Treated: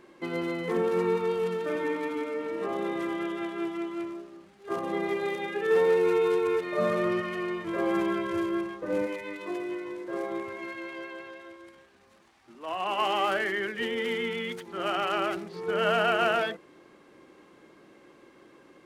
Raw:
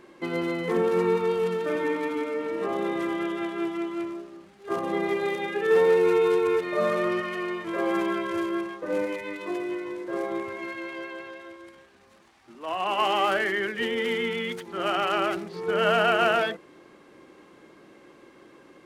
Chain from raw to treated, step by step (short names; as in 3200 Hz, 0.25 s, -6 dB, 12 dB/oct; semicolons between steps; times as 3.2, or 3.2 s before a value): 6.78–9.07 low shelf 190 Hz +10 dB; gain -3 dB